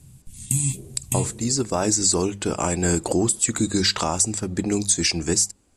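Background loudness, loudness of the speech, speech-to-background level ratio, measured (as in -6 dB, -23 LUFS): -25.5 LUFS, -21.5 LUFS, 4.0 dB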